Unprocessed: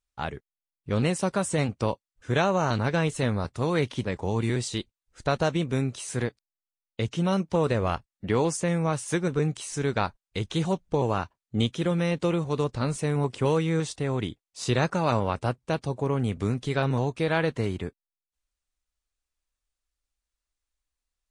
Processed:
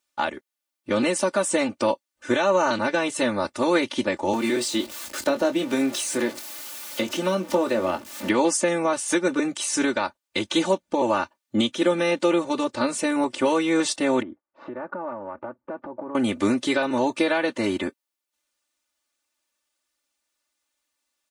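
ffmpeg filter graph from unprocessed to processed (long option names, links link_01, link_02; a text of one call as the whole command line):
ffmpeg -i in.wav -filter_complex "[0:a]asettb=1/sr,asplit=3[link_01][link_02][link_03];[link_01]atrim=end=4.334[link_04];[link_02]atrim=start=4.33:end=8.29,asetpts=PTS-STARTPTS,afade=type=in:duration=0.004:curve=qsin,afade=type=out:start_time=3.956:duration=0.004:curve=qsin,aeval=exprs='val(0)+0.5*0.015*sgn(val(0))':channel_layout=same,acrossover=split=170|540[link_05][link_06][link_07];[link_05]acompressor=threshold=-41dB:ratio=4[link_08];[link_06]acompressor=threshold=-31dB:ratio=4[link_09];[link_07]acompressor=threshold=-39dB:ratio=4[link_10];[link_08][link_09][link_10]amix=inputs=3:normalize=0,asplit=2[link_11][link_12];[link_12]adelay=22,volume=-9dB[link_13];[link_11][link_13]amix=inputs=2:normalize=0,atrim=end_sample=174636[link_14];[link_03]atrim=start=8.286[link_15];[link_04][link_14]acrossfade=duration=0.004:curve1=hsin:curve2=qsin[link_16];[link_16][link_15]acrossfade=duration=0.004:curve1=qsin:curve2=hsin,asettb=1/sr,asplit=3[link_17][link_18][link_19];[link_17]atrim=end=14.224[link_20];[link_18]atrim=start=14.22:end=16.15,asetpts=PTS-STARTPTS,afade=type=in:duration=0.004:curve=qsin,afade=type=out:start_time=1.926:duration=0.004:curve=qsin,lowpass=frequency=1500:width=0.5412,lowpass=frequency=1500:width=1.3066,acompressor=threshold=-38dB:ratio=8:attack=3.2:release=140:knee=1:detection=peak[link_21];[link_19]atrim=start=16.146[link_22];[link_20][link_21]acrossfade=duration=0.004:curve1=hsin:curve2=qsin[link_23];[link_23][link_22]acrossfade=duration=0.004:curve1=qsin:curve2=hsin,highpass=260,alimiter=limit=-20dB:level=0:latency=1:release=380,aecho=1:1:3.4:0.99,volume=8dB" out.wav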